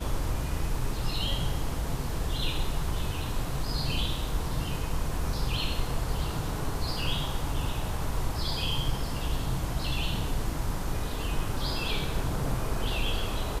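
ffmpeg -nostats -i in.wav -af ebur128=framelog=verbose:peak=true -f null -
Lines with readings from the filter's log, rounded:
Integrated loudness:
  I:         -31.9 LUFS
  Threshold: -41.9 LUFS
Loudness range:
  LRA:         0.5 LU
  Threshold: -51.9 LUFS
  LRA low:   -32.2 LUFS
  LRA high:  -31.7 LUFS
True peak:
  Peak:      -14.8 dBFS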